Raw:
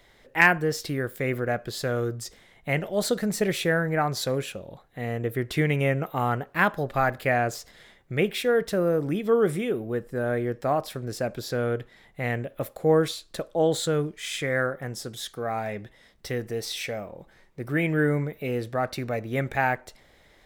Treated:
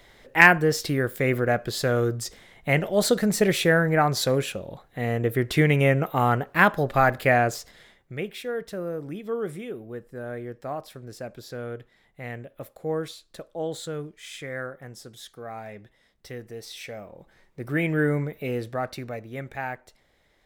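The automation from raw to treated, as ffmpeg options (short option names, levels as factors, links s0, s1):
-af "volume=3.98,afade=t=out:st=7.32:d=0.9:silence=0.251189,afade=t=in:st=16.71:d=1.05:silence=0.398107,afade=t=out:st=18.49:d=0.84:silence=0.398107"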